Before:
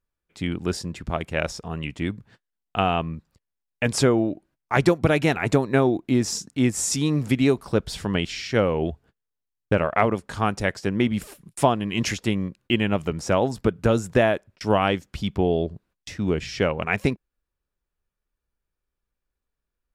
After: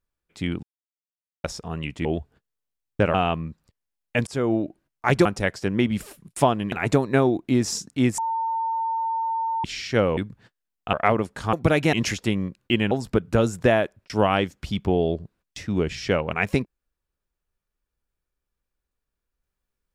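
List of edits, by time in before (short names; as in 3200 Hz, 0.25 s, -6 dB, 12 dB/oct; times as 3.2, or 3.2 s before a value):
0.63–1.44 mute
2.05–2.81 swap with 8.77–9.86
3.94–4.21 fade in
4.92–5.32 swap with 10.46–11.93
6.78–8.24 bleep 904 Hz -22.5 dBFS
12.91–13.42 cut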